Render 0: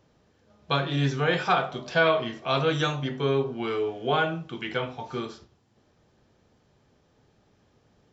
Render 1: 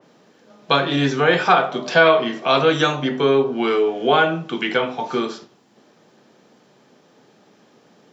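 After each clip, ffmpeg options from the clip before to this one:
ffmpeg -i in.wav -filter_complex "[0:a]highpass=frequency=180:width=0.5412,highpass=frequency=180:width=1.3066,asplit=2[link_01][link_02];[link_02]acompressor=threshold=-32dB:ratio=6,volume=-2dB[link_03];[link_01][link_03]amix=inputs=2:normalize=0,adynamicequalizer=threshold=0.0112:dfrequency=2700:dqfactor=0.7:tfrequency=2700:tqfactor=0.7:attack=5:release=100:ratio=0.375:range=2:mode=cutabove:tftype=highshelf,volume=7dB" out.wav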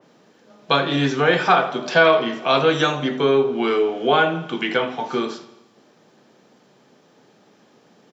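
ffmpeg -i in.wav -af "aecho=1:1:83|166|249|332|415|498:0.141|0.0848|0.0509|0.0305|0.0183|0.011,volume=-1dB" out.wav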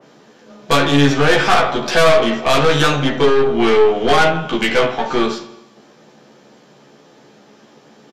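ffmpeg -i in.wav -filter_complex "[0:a]aeval=exprs='(tanh(10*val(0)+0.55)-tanh(0.55))/10':channel_layout=same,asplit=2[link_01][link_02];[link_02]adelay=14,volume=-2.5dB[link_03];[link_01][link_03]amix=inputs=2:normalize=0,aresample=32000,aresample=44100,volume=8.5dB" out.wav

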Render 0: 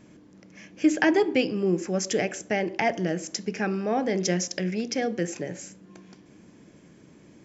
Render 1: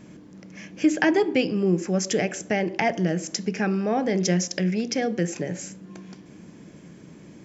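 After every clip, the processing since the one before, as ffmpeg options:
ffmpeg -i in.wav -filter_complex "[0:a]equalizer=frequency=170:width_type=o:width=0.51:gain=5,asplit=2[link_01][link_02];[link_02]acompressor=threshold=-32dB:ratio=6,volume=-0.5dB[link_03];[link_01][link_03]amix=inputs=2:normalize=0,volume=-1dB" out.wav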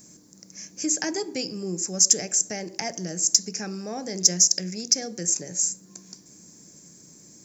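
ffmpeg -i in.wav -af "aexciter=amount=15.4:drive=5.7:freq=4700,volume=-9.5dB" out.wav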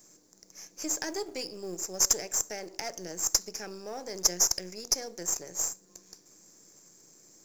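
ffmpeg -i in.wav -af "aeval=exprs='if(lt(val(0),0),0.447*val(0),val(0))':channel_layout=same,lowshelf=frequency=300:width_type=q:width=1.5:gain=-7,acrusher=bits=6:mode=log:mix=0:aa=0.000001,volume=-4dB" out.wav

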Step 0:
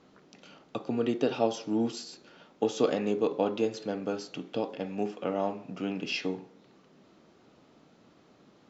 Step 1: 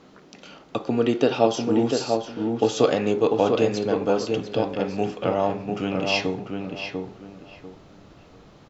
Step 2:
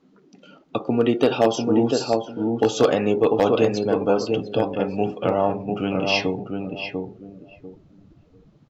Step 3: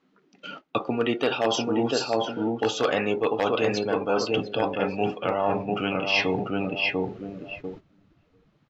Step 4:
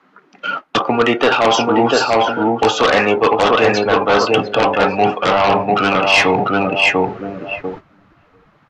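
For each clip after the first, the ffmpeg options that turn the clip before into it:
ffmpeg -i in.wav -filter_complex "[0:a]asubboost=boost=8.5:cutoff=79,asplit=2[link_01][link_02];[link_02]adelay=695,lowpass=frequency=2000:poles=1,volume=-4dB,asplit=2[link_03][link_04];[link_04]adelay=695,lowpass=frequency=2000:poles=1,volume=0.27,asplit=2[link_05][link_06];[link_06]adelay=695,lowpass=frequency=2000:poles=1,volume=0.27,asplit=2[link_07][link_08];[link_08]adelay=695,lowpass=frequency=2000:poles=1,volume=0.27[link_09];[link_03][link_05][link_07][link_09]amix=inputs=4:normalize=0[link_10];[link_01][link_10]amix=inputs=2:normalize=0,volume=8.5dB" out.wav
ffmpeg -i in.wav -filter_complex "[0:a]asplit=2[link_01][link_02];[link_02]aeval=exprs='(mod(2.82*val(0)+1,2)-1)/2.82':channel_layout=same,volume=-11dB[link_03];[link_01][link_03]amix=inputs=2:normalize=0,afftdn=noise_reduction=17:noise_floor=-37" out.wav
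ffmpeg -i in.wav -af "equalizer=frequency=2000:width_type=o:width=2.7:gain=11.5,agate=range=-14dB:threshold=-43dB:ratio=16:detection=peak,areverse,acompressor=threshold=-26dB:ratio=4,areverse,volume=3dB" out.wav
ffmpeg -i in.wav -filter_complex "[0:a]acrossover=split=110|790|1800[link_01][link_02][link_03][link_04];[link_03]aeval=exprs='0.0944*sin(PI/2*3.55*val(0)/0.0944)':channel_layout=same[link_05];[link_01][link_02][link_05][link_04]amix=inputs=4:normalize=0,volume=8dB" -ar 32000 -c:a libvorbis -b:a 64k out.ogg

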